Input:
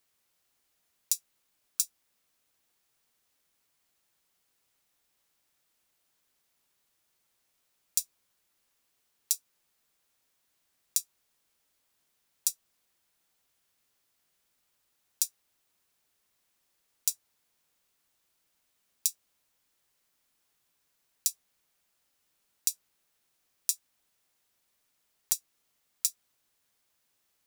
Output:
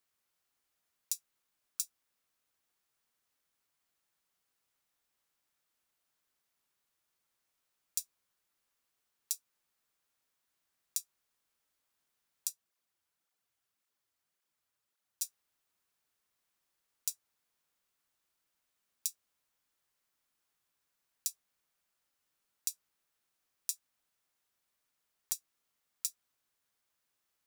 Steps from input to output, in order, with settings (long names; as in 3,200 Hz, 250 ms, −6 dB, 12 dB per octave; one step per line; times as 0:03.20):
parametric band 1,300 Hz +3.5 dB 1.1 octaves
0:12.47–0:15.22: through-zero flanger with one copy inverted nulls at 1.8 Hz, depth 5.8 ms
level −7.5 dB